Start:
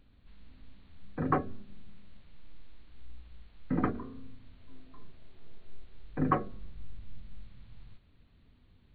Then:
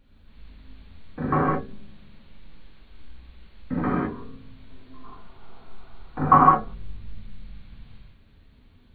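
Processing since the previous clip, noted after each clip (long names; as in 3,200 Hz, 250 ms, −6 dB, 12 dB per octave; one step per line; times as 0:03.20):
reverb whose tail is shaped and stops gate 230 ms flat, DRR −7.5 dB
gain on a spectral selection 0:05.05–0:06.74, 650–1,500 Hz +10 dB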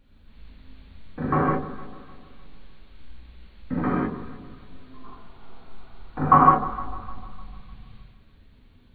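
delay that swaps between a low-pass and a high-pass 151 ms, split 980 Hz, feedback 62%, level −12 dB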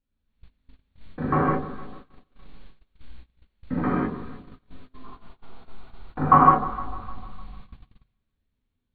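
noise gate −39 dBFS, range −24 dB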